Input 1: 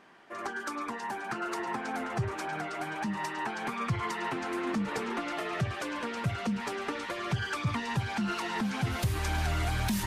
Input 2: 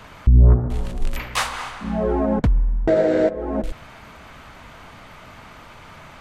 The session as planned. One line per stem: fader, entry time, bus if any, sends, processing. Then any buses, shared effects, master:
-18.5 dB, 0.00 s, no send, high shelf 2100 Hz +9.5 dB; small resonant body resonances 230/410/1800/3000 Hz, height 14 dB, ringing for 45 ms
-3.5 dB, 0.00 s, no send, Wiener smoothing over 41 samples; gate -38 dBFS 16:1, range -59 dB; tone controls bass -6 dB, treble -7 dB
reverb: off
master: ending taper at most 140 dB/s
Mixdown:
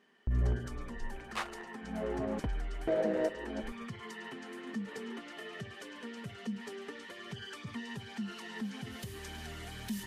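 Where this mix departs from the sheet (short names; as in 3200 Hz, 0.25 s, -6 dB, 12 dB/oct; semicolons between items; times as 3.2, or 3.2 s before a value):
stem 2 -3.5 dB -> -12.5 dB; master: missing ending taper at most 140 dB/s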